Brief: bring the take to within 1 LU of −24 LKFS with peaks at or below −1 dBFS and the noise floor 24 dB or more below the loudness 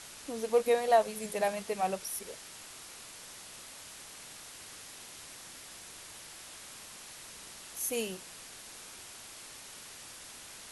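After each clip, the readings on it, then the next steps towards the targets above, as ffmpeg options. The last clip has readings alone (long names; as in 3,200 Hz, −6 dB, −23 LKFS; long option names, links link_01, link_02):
background noise floor −49 dBFS; target noise floor −61 dBFS; integrated loudness −36.5 LKFS; sample peak −12.5 dBFS; target loudness −24.0 LKFS
→ -af "afftdn=noise_reduction=12:noise_floor=-49"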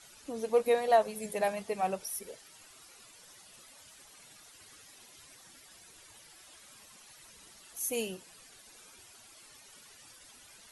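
background noise floor −56 dBFS; integrated loudness −31.5 LKFS; sample peak −12.5 dBFS; target loudness −24.0 LKFS
→ -af "volume=7.5dB"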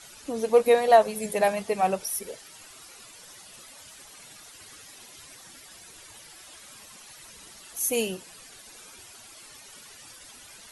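integrated loudness −24.0 LKFS; sample peak −5.0 dBFS; background noise floor −49 dBFS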